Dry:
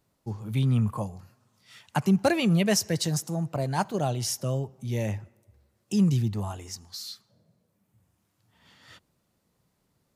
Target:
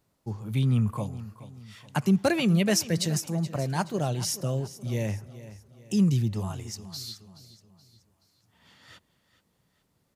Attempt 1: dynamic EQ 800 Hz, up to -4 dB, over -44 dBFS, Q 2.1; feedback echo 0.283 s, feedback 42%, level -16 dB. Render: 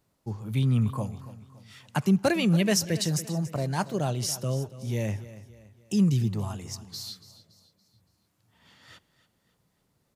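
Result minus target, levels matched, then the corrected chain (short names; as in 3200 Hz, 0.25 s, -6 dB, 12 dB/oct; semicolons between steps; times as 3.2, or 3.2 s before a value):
echo 0.142 s early
dynamic EQ 800 Hz, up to -4 dB, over -44 dBFS, Q 2.1; feedback echo 0.425 s, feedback 42%, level -16 dB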